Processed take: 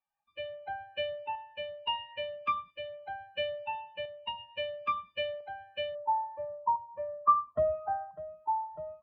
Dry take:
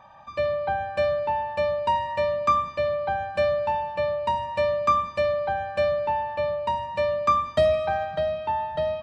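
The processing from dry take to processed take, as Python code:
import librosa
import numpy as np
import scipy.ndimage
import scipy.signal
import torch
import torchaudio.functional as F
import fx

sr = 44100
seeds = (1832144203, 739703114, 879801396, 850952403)

y = fx.bin_expand(x, sr, power=2.0)
y = fx.tremolo_shape(y, sr, shape='saw_up', hz=0.74, depth_pct=40)
y = fx.ladder_lowpass(y, sr, hz=fx.steps((0.0, 3000.0), (5.94, 1100.0)), resonance_pct=85)
y = y * librosa.db_to_amplitude(4.0)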